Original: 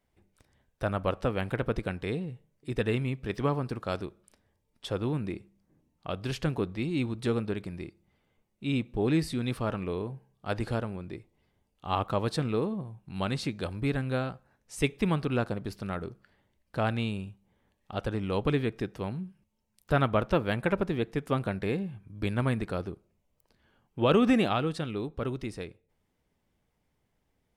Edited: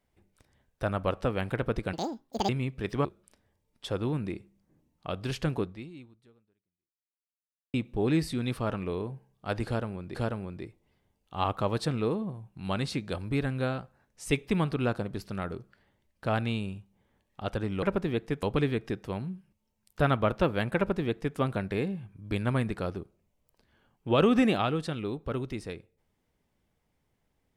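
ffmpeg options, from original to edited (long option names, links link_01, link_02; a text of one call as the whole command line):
ffmpeg -i in.wav -filter_complex "[0:a]asplit=8[link_01][link_02][link_03][link_04][link_05][link_06][link_07][link_08];[link_01]atrim=end=1.934[link_09];[link_02]atrim=start=1.93:end=2.94,asetpts=PTS-STARTPTS,asetrate=79821,aresample=44100,atrim=end_sample=24608,asetpts=PTS-STARTPTS[link_10];[link_03]atrim=start=2.936:end=3.502[link_11];[link_04]atrim=start=4.048:end=8.74,asetpts=PTS-STARTPTS,afade=type=out:start_time=2.552:duration=2.14:curve=exp[link_12];[link_05]atrim=start=8.74:end=11.152,asetpts=PTS-STARTPTS,afade=type=in:duration=0.004:curve=hsin[link_13];[link_06]atrim=start=10.658:end=18.342[link_14];[link_07]atrim=start=20.678:end=21.282[link_15];[link_08]atrim=start=18.338[link_16];[link_09][link_10]acrossfade=duration=0.004:curve1=hsin:curve2=hsin[link_17];[link_17][link_11]acrossfade=duration=0.004:curve1=hsin:curve2=hsin[link_18];[link_12][link_13]concat=n=2:v=0:a=1[link_19];[link_18][link_19]acrossfade=duration=0.004:curve1=hsin:curve2=hsin[link_20];[link_20][link_14]acrossfade=duration=0.004:curve1=hsin:curve2=hsin[link_21];[link_21][link_15]acrossfade=duration=0.004:curve1=hsin:curve2=hsin[link_22];[link_22][link_16]acrossfade=duration=0.004:curve1=hsin:curve2=hsin" out.wav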